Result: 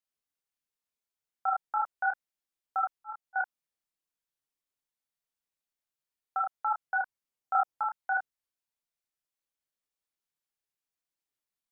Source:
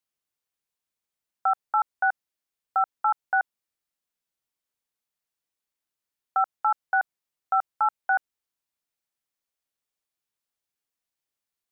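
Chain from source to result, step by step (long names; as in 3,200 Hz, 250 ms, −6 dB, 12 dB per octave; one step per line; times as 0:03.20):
0:02.94–0:03.36: volume swells 235 ms
multi-voice chorus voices 6, 1.1 Hz, delay 29 ms, depth 4 ms
level −2 dB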